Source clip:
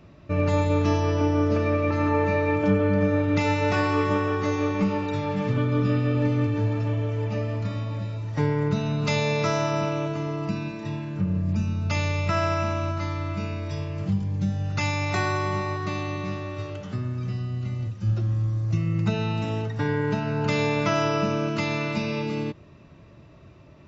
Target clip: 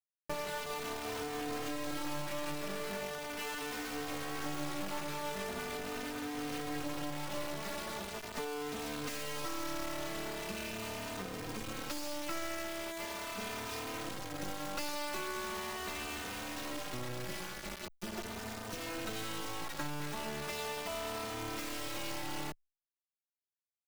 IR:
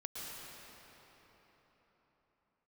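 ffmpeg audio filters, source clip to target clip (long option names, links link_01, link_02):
-filter_complex "[0:a]highpass=frequency=250:width=0.5412,highpass=frequency=250:width=1.3066,acompressor=threshold=-37dB:ratio=12,acrusher=bits=4:dc=4:mix=0:aa=0.000001,asplit=2[link_01][link_02];[link_02]adelay=3.1,afreqshift=0.4[link_03];[link_01][link_03]amix=inputs=2:normalize=1,volume=6.5dB"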